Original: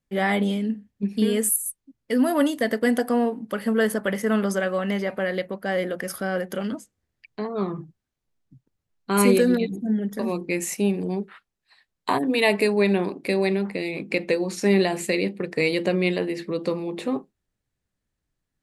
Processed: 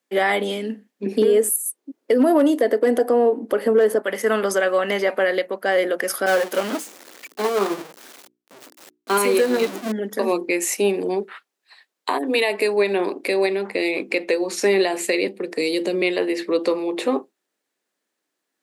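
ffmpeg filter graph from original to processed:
-filter_complex "[0:a]asettb=1/sr,asplit=3[s0][s1][s2];[s0]atrim=end=1.064[s3];[s1]atrim=start=1.06:end=4.02,asetpts=PTS-STARTPTS,afade=t=in:d=0.004:c=qsin,afade=t=out:st=2.956:d=0.004:c=qsin,equalizer=f=390:t=o:w=2.3:g=14,asoftclip=type=hard:threshold=0.794[s4];[s2]atrim=start=4.016[s5];[s3][s4]acrossfade=d=0.004:c1=hsin:c2=qsin[s6];[s6][s5]acrossfade=d=0.004:c1=qsin:c2=hsin,asettb=1/sr,asplit=3[s7][s8][s9];[s7]atrim=end=6.264[s10];[s8]atrim=start=6.26:end=9.92,asetpts=PTS-STARTPTS,afade=t=in:d=0.004:c=qsin,afade=t=out:st=3.656:d=0.004:c=qsin,aeval=exprs='val(0)+0.5*0.0501*sgn(val(0))':c=same,bandreject=f=60:t=h:w=6,bandreject=f=120:t=h:w=6,bandreject=f=180:t=h:w=6,bandreject=f=240:t=h:w=6,bandreject=f=300:t=h:w=6,bandreject=f=360:t=h:w=6,bandreject=f=420:t=h:w=6,agate=range=0.0224:threshold=0.0631:ratio=3:release=100:detection=peak[s11];[s9]atrim=start=9.916[s12];[s10][s11]acrossfade=d=0.004:c1=hsin:c2=qsin[s13];[s13][s12]acrossfade=d=0.004:c1=qsin:c2=hsin,asettb=1/sr,asplit=3[s14][s15][s16];[s14]atrim=end=15.274[s17];[s15]atrim=start=15.27:end=16.02,asetpts=PTS-STARTPTS,afade=t=in:d=0.004:c=qsin,afade=t=out:st=0.746:d=0.004:c=qsin,acrossover=split=370|3000[s18][s19][s20];[s19]acompressor=threshold=0.0178:ratio=4:attack=3.2:release=140:knee=2.83:detection=peak[s21];[s18][s21][s20]amix=inputs=3:normalize=0,equalizer=f=1900:w=0.47:g=-5[s22];[s16]atrim=start=16.016[s23];[s17][s22]acrossfade=d=0.004:c1=hsin:c2=qsin[s24];[s24][s23]acrossfade=d=0.004:c1=qsin:c2=hsin,highpass=f=300:w=0.5412,highpass=f=300:w=1.3066,alimiter=limit=0.141:level=0:latency=1:release=389,volume=2.51"

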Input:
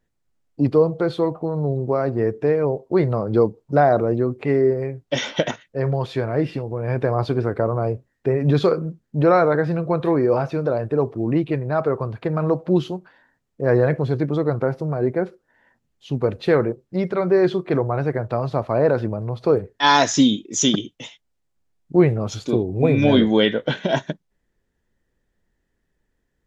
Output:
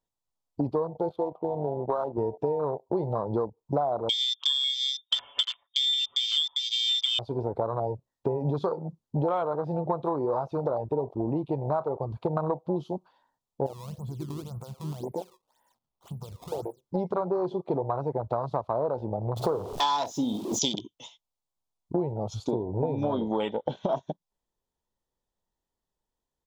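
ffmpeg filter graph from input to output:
-filter_complex "[0:a]asettb=1/sr,asplit=3[s0][s1][s2];[s0]atrim=end=1.094[s3];[s1]atrim=start=1.09:end=2.18,asetpts=PTS-STARTPTS,afade=t=in:d=0.004:c=qsin,afade=t=out:st=1.086:d=0.004:c=qsin,highpass=f=410:p=1,adynamicsmooth=sensitivity=5.5:basefreq=1000,highshelf=f=4600:g=-8[s4];[s2]atrim=start=2.176[s5];[s3][s4]acrossfade=d=0.004:c1=hsin:c2=qsin[s6];[s6][s5]acrossfade=d=0.004:c1=qsin:c2=hsin,asettb=1/sr,asplit=3[s7][s8][s9];[s7]atrim=end=4.094[s10];[s8]atrim=start=4.09:end=7.19,asetpts=PTS-STARTPTS,afade=t=in:d=0.004:c=qsin,afade=t=out:st=3.096:d=0.004:c=qsin,aecho=1:1:6.7:0.93,atrim=end_sample=136710,lowpass=f=3100:t=q:w=0.5098,lowpass=f=3100:t=q:w=0.6013,lowpass=f=3100:t=q:w=0.9,lowpass=f=3100:t=q:w=2.563,afreqshift=-3700[s11];[s9]atrim=start=7.186[s12];[s10][s11]acrossfade=d=0.004:c1=hsin:c2=qsin[s13];[s13][s12]acrossfade=d=0.004:c1=qsin:c2=hsin,asettb=1/sr,asplit=3[s14][s15][s16];[s14]atrim=end=13.664[s17];[s15]atrim=start=13.66:end=16.81,asetpts=PTS-STARTPTS,afade=t=in:d=0.004:c=qsin,afade=t=out:st=3.146:d=0.004:c=qsin,acompressor=threshold=0.0316:ratio=8:attack=3.2:release=140:knee=1:detection=peak,acrusher=samples=17:mix=1:aa=0.000001:lfo=1:lforange=27.2:lforate=1.9[s18];[s16]atrim=start=16.806[s19];[s17][s18]acrossfade=d=0.004:c1=hsin:c2=qsin[s20];[s20][s19]acrossfade=d=0.004:c1=qsin:c2=hsin,asettb=1/sr,asplit=3[s21][s22][s23];[s21]atrim=end=19.364[s24];[s22]atrim=start=19.36:end=20.59,asetpts=PTS-STARTPTS,afade=t=in:d=0.004:c=qsin,afade=t=out:st=1.226:d=0.004:c=qsin,aeval=exprs='val(0)+0.5*0.0596*sgn(val(0))':c=same,asplit=2[s25][s26];[s26]adelay=48,volume=0.266[s27];[s25][s27]amix=inputs=2:normalize=0,atrim=end_sample=54243[s28];[s23]atrim=start=20.586[s29];[s24][s28]acrossfade=d=0.004:c1=hsin:c2=qsin[s30];[s30][s29]acrossfade=d=0.004:c1=qsin:c2=hsin,afwtdn=0.0708,firequalizer=gain_entry='entry(280,0);entry(960,14);entry(1700,-6);entry(3400,10)':delay=0.05:min_phase=1,acompressor=threshold=0.0562:ratio=8"

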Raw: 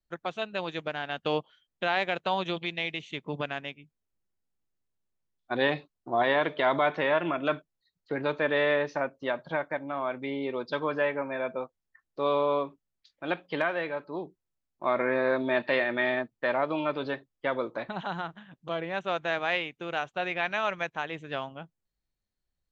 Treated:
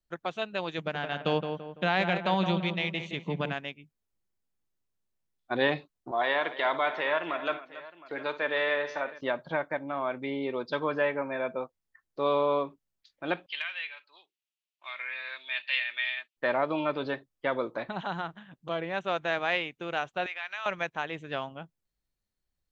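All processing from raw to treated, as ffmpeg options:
-filter_complex "[0:a]asettb=1/sr,asplit=3[s0][s1][s2];[s0]atrim=end=0.784[s3];[s1]atrim=start=0.78:end=3.54,asetpts=PTS-STARTPTS,afade=t=in:d=0.004:c=qsin,afade=t=out:st=2.756:d=0.004:c=qsin,equalizer=f=180:t=o:w=0.42:g=11.5,asplit=2[s4][s5];[s5]adelay=168,lowpass=f=2200:p=1,volume=0.473,asplit=2[s6][s7];[s7]adelay=168,lowpass=f=2200:p=1,volume=0.42,asplit=2[s8][s9];[s9]adelay=168,lowpass=f=2200:p=1,volume=0.42,asplit=2[s10][s11];[s11]adelay=168,lowpass=f=2200:p=1,volume=0.42,asplit=2[s12][s13];[s13]adelay=168,lowpass=f=2200:p=1,volume=0.42[s14];[s4][s6][s8][s10][s12][s14]amix=inputs=6:normalize=0,atrim=end_sample=121716[s15];[s2]atrim=start=3.536[s16];[s3][s15]acrossfade=d=0.004:c1=hsin:c2=qsin[s17];[s17][s16]acrossfade=d=0.004:c1=qsin:c2=hsin,asettb=1/sr,asplit=3[s18][s19][s20];[s18]atrim=end=6.114[s21];[s19]atrim=start=6.11:end=9.21,asetpts=PTS-STARTPTS,afade=t=in:d=0.004:c=qsin,afade=t=out:st=3.096:d=0.004:c=qsin,highpass=f=750:p=1,aecho=1:1:57|281|714:0.188|0.178|0.119,atrim=end_sample=136710[s22];[s20]atrim=start=9.206[s23];[s21][s22]acrossfade=d=0.004:c1=hsin:c2=qsin[s24];[s24][s23]acrossfade=d=0.004:c1=qsin:c2=hsin,asettb=1/sr,asplit=3[s25][s26][s27];[s25]atrim=end=13.464[s28];[s26]atrim=start=13.46:end=16.37,asetpts=PTS-STARTPTS,afade=t=in:d=0.004:c=qsin,afade=t=out:st=2.906:d=0.004:c=qsin,highpass=f=2800:t=q:w=3,highshelf=f=5000:g=-7[s29];[s27]atrim=start=16.366[s30];[s28][s29]acrossfade=d=0.004:c1=hsin:c2=qsin[s31];[s31][s30]acrossfade=d=0.004:c1=qsin:c2=hsin,asettb=1/sr,asplit=3[s32][s33][s34];[s32]atrim=end=20.264[s35];[s33]atrim=start=20.26:end=20.66,asetpts=PTS-STARTPTS,afade=t=in:d=0.004:c=qsin,afade=t=out:st=0.396:d=0.004:c=qsin,highpass=1200,acompressor=threshold=0.0178:ratio=2:attack=3.2:release=140:knee=1:detection=peak[s36];[s34]atrim=start=20.656[s37];[s35][s36]acrossfade=d=0.004:c1=hsin:c2=qsin[s38];[s38][s37]acrossfade=d=0.004:c1=qsin:c2=hsin"

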